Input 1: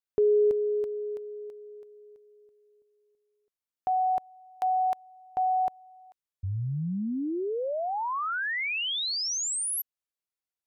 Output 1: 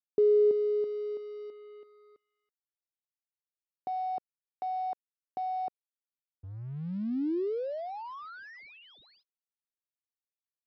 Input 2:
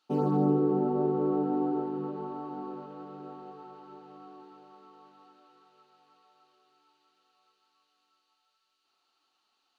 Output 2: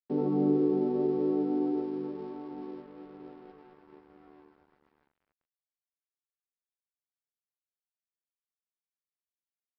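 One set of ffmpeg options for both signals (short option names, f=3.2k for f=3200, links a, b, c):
-af "bandpass=f=320:t=q:w=1.2:csg=0,aresample=11025,aeval=exprs='sgn(val(0))*max(abs(val(0))-0.0015,0)':c=same,aresample=44100,volume=1dB"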